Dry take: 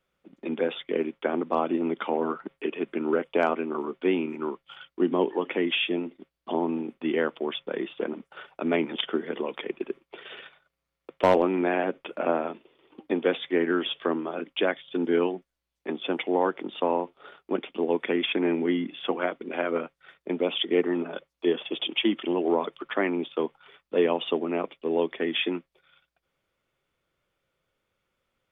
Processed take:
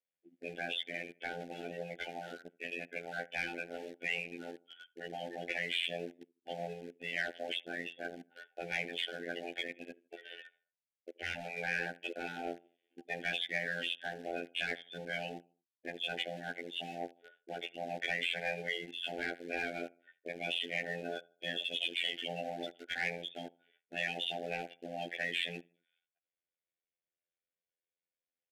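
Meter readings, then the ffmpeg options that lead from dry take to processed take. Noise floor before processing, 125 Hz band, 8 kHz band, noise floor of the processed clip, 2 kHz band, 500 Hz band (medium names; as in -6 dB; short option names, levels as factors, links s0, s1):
-84 dBFS, -9.0 dB, no reading, under -85 dBFS, -2.5 dB, -16.5 dB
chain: -filter_complex "[0:a]afftdn=nr=18:nf=-38,afftfilt=real='re*lt(hypot(re,im),0.141)':imag='im*lt(hypot(re,im),0.141)':win_size=1024:overlap=0.75,asplit=2[s0][s1];[s1]adelay=77,lowpass=f=2500:p=1,volume=0.0841,asplit=2[s2][s3];[s3]adelay=77,lowpass=f=2500:p=1,volume=0.41,asplit=2[s4][s5];[s5]adelay=77,lowpass=f=2500:p=1,volume=0.41[s6];[s2][s4][s6]amix=inputs=3:normalize=0[s7];[s0][s7]amix=inputs=2:normalize=0,afftfilt=real='hypot(re,im)*cos(PI*b)':imag='0':win_size=2048:overlap=0.75,asplit=2[s8][s9];[s9]aeval=exprs='val(0)*gte(abs(val(0)),0.00708)':c=same,volume=0.473[s10];[s8][s10]amix=inputs=2:normalize=0,asplit=2[s11][s12];[s12]highpass=f=720:p=1,volume=6.31,asoftclip=type=tanh:threshold=0.251[s13];[s11][s13]amix=inputs=2:normalize=0,lowpass=f=2900:p=1,volume=0.501,asuperstop=centerf=1100:order=12:qfactor=1.6,aresample=32000,aresample=44100,adynamicequalizer=threshold=0.0112:dfrequency=1800:dqfactor=0.7:tfrequency=1800:tqfactor=0.7:attack=5:release=100:ratio=0.375:range=2:mode=boostabove:tftype=highshelf,volume=0.422"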